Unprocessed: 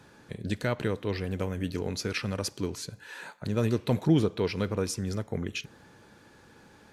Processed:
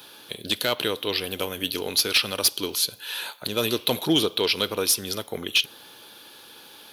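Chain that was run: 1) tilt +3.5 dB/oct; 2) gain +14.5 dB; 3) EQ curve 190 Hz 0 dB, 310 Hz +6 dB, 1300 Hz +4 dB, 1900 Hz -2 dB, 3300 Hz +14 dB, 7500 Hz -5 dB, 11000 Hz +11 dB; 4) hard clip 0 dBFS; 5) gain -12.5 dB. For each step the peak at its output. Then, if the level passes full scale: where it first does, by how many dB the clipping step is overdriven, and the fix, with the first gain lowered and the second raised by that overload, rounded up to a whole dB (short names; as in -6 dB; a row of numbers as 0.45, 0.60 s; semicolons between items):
-11.5, +3.0, +8.5, 0.0, -12.5 dBFS; step 2, 8.5 dB; step 2 +5.5 dB, step 5 -3.5 dB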